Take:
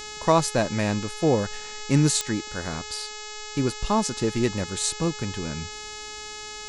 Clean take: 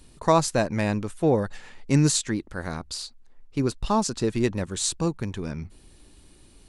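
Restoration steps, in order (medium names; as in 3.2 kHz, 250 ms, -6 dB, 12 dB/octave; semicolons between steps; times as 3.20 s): de-click; de-hum 424.1 Hz, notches 18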